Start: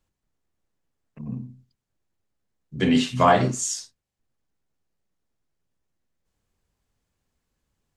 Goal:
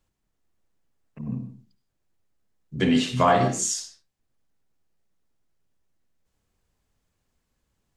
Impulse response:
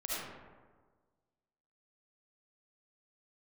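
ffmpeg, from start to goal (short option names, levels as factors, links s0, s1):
-filter_complex "[0:a]acompressor=threshold=0.0708:ratio=1.5,asplit=2[s0][s1];[1:a]atrim=start_sample=2205,afade=t=out:st=0.22:d=0.01,atrim=end_sample=10143[s2];[s1][s2]afir=irnorm=-1:irlink=0,volume=0.316[s3];[s0][s3]amix=inputs=2:normalize=0"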